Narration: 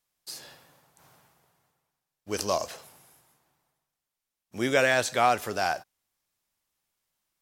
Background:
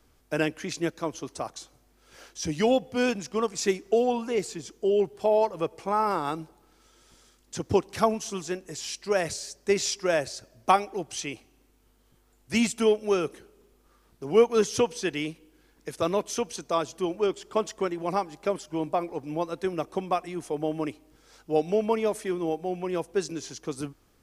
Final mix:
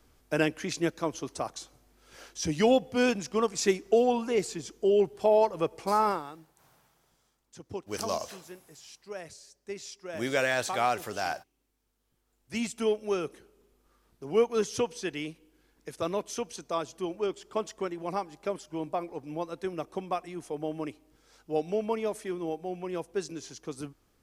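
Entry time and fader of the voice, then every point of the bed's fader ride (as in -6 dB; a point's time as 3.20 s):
5.60 s, -4.5 dB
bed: 6.09 s 0 dB
6.30 s -15 dB
11.93 s -15 dB
12.91 s -5 dB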